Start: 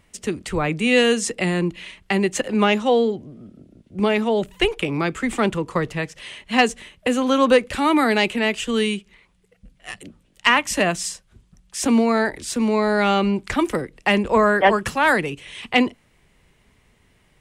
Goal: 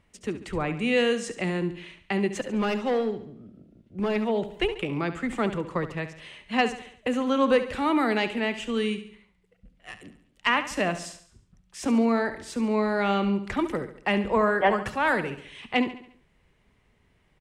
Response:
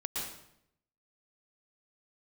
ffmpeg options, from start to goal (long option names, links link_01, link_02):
-filter_complex "[0:a]asettb=1/sr,asplit=3[link_01][link_02][link_03];[link_01]atrim=end=2.314[link_04];[link_02]atrim=start=2.31:end=4.16,asetpts=PTS-STARTPTS,afade=type=in:duration=0.004:curve=qsin,afade=type=out:start_time=1.846:duration=0.004:curve=qsin,volume=15.5dB,asoftclip=hard,volume=-15.5dB[link_05];[link_03]atrim=start=4.156[link_06];[link_04][link_05]acrossfade=duration=0.004:curve1=hsin:curve2=qsin[link_07];[link_07][link_06]acrossfade=duration=0.004:curve1=qsin:curve2=hsin,highshelf=frequency=5000:gain=-10.5,asplit=2[link_08][link_09];[link_09]aecho=0:1:70|140|210|280|350:0.251|0.118|0.0555|0.0261|0.0123[link_10];[link_08][link_10]amix=inputs=2:normalize=0,volume=-6dB"